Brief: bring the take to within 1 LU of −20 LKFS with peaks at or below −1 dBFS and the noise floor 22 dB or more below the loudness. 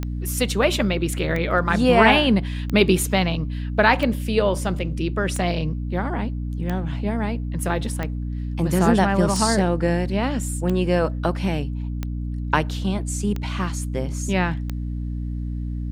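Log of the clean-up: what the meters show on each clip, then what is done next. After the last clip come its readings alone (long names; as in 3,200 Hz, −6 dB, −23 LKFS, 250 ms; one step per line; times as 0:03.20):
number of clicks 12; mains hum 60 Hz; hum harmonics up to 300 Hz; level of the hum −25 dBFS; integrated loudness −22.0 LKFS; sample peak −2.0 dBFS; target loudness −20.0 LKFS
→ click removal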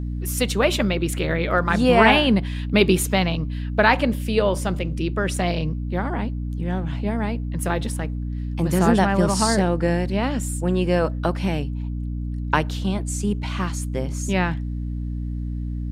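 number of clicks 0; mains hum 60 Hz; hum harmonics up to 300 Hz; level of the hum −25 dBFS
→ mains-hum notches 60/120/180/240/300 Hz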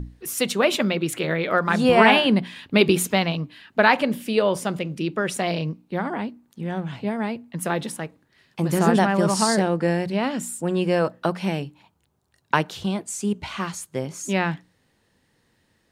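mains hum none found; integrated loudness −22.5 LKFS; sample peak −2.0 dBFS; target loudness −20.0 LKFS
→ level +2.5 dB
brickwall limiter −1 dBFS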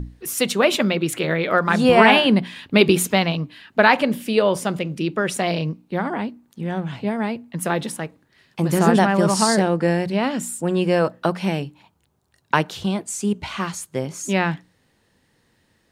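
integrated loudness −20.5 LKFS; sample peak −1.0 dBFS; background noise floor −64 dBFS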